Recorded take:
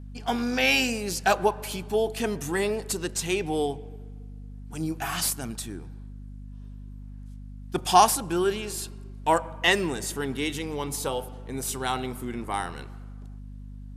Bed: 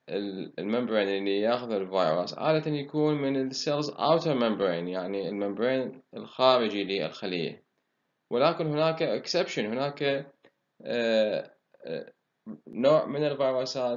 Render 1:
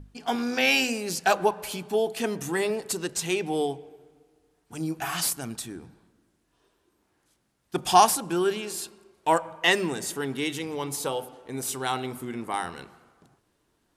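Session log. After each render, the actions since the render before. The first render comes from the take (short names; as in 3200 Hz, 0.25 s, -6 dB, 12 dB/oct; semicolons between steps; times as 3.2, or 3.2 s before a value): notches 50/100/150/200/250 Hz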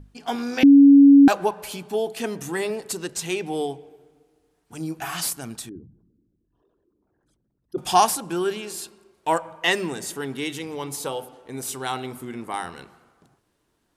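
0.63–1.28 bleep 280 Hz -7 dBFS; 5.69–7.78 formant sharpening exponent 3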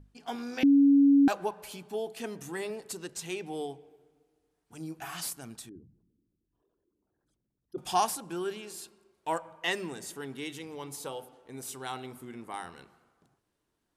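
gain -9.5 dB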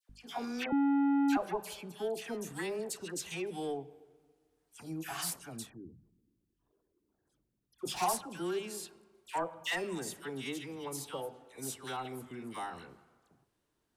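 soft clip -26.5 dBFS, distortion -7 dB; dispersion lows, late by 95 ms, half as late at 1500 Hz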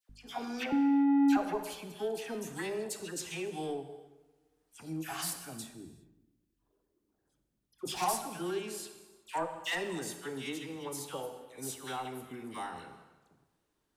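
tape echo 86 ms, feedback 59%, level -17 dB, low-pass 4300 Hz; non-linear reverb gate 0.42 s falling, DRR 8.5 dB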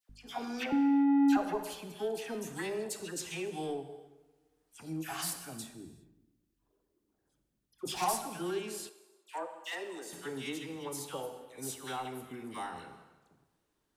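1.27–1.89 notch 2300 Hz; 8.89–10.13 ladder high-pass 280 Hz, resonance 25%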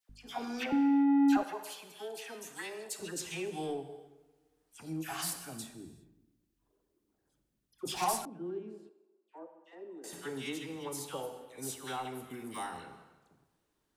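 1.43–2.99 HPF 1000 Hz 6 dB/oct; 8.25–10.04 band-pass 260 Hz, Q 1.5; 12.3–12.77 high shelf 7600 Hz +10.5 dB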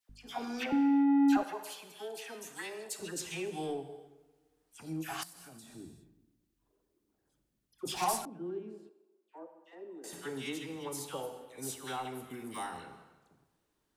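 5.23–5.75 compressor 16:1, threshold -48 dBFS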